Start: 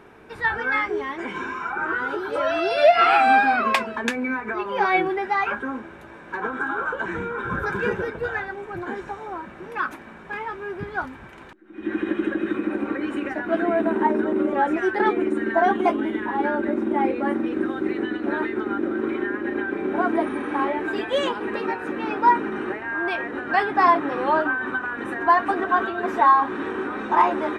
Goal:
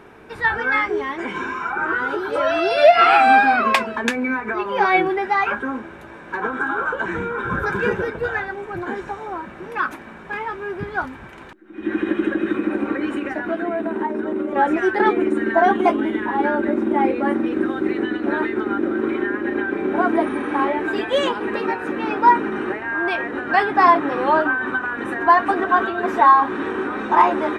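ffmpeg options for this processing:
-filter_complex "[0:a]asettb=1/sr,asplit=3[s0][s1][s2];[s0]atrim=end=13.124[s3];[s1]atrim=start=13.12:end=14.56,asetpts=PTS-STARTPTS,afade=t=in:d=0.004:c=qsin,afade=t=out:st=1.436:d=0.004:c=qsin,acompressor=threshold=0.0631:ratio=6[s4];[s2]atrim=start=14.556[s5];[s3][s4]acrossfade=d=0.004:c1=hsin:c2=qsin[s6];[s6][s5]acrossfade=d=0.004:c1=qsin:c2=hsin,volume=1.5"

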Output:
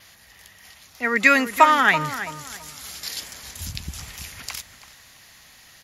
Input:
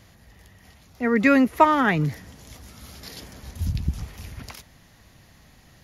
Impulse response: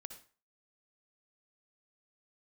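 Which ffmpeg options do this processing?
-filter_complex "[0:a]tiltshelf=f=730:g=-10,asplit=2[s0][s1];[s1]adelay=331,lowpass=f=2000:p=1,volume=0.282,asplit=2[s2][s3];[s3]adelay=331,lowpass=f=2000:p=1,volume=0.31,asplit=2[s4][s5];[s5]adelay=331,lowpass=f=2000:p=1,volume=0.31[s6];[s0][s2][s4][s6]amix=inputs=4:normalize=0,adynamicequalizer=threshold=0.00158:dfrequency=7700:dqfactor=4.3:tfrequency=7700:tqfactor=4.3:attack=5:release=100:ratio=0.375:range=3.5:mode=boostabove:tftype=bell"

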